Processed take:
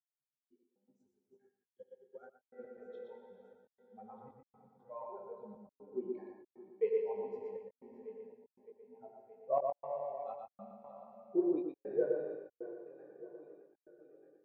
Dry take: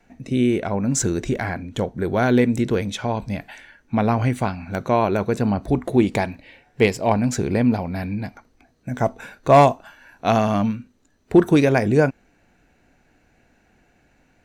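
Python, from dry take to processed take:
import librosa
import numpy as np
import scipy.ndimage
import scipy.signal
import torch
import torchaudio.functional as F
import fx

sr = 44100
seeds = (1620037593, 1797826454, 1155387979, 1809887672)

y = fx.bin_expand(x, sr, power=3.0)
y = fx.ladder_bandpass(y, sr, hz=500.0, resonance_pct=60)
y = fx.echo_feedback(y, sr, ms=618, feedback_pct=59, wet_db=-15)
y = fx.rev_plate(y, sr, seeds[0], rt60_s=2.7, hf_ratio=1.0, predelay_ms=0, drr_db=2.0)
y = fx.step_gate(y, sr, bpm=119, pattern='xx..x.xxxxxx..xx', floor_db=-60.0, edge_ms=4.5)
y = fx.chorus_voices(y, sr, voices=4, hz=0.73, base_ms=21, depth_ms=1.8, mix_pct=35)
y = y + 10.0 ** (-4.0 / 20.0) * np.pad(y, (int(119 * sr / 1000.0), 0))[:len(y)]
y = fx.upward_expand(y, sr, threshold_db=-57.0, expansion=2.5, at=(0.41, 2.6))
y = F.gain(torch.from_numpy(y), -3.0).numpy()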